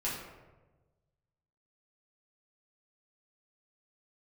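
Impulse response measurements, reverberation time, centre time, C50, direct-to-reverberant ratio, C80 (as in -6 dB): 1.2 s, 59 ms, 2.0 dB, -8.0 dB, 5.0 dB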